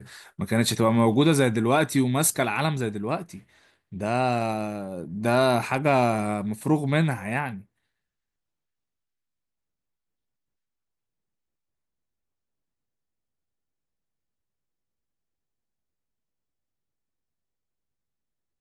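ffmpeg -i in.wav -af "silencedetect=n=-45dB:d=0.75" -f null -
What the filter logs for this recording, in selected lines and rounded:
silence_start: 7.62
silence_end: 18.61 | silence_duration: 10.98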